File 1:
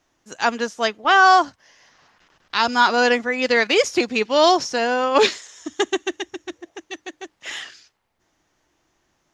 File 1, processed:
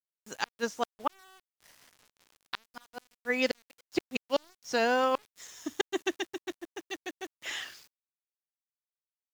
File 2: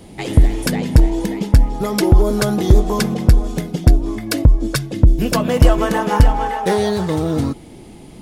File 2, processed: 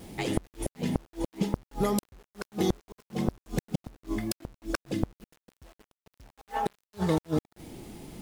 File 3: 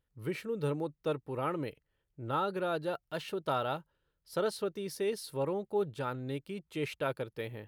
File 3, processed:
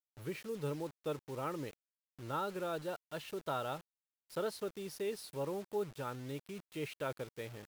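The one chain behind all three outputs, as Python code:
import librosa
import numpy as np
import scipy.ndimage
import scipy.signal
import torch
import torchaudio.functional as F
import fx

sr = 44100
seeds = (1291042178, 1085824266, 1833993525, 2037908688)

y = fx.gate_flip(x, sr, shuts_db=-9.0, range_db=-40)
y = fx.quant_dither(y, sr, seeds[0], bits=8, dither='none')
y = fx.wow_flutter(y, sr, seeds[1], rate_hz=2.1, depth_cents=28.0)
y = F.gain(torch.from_numpy(y), -5.5).numpy()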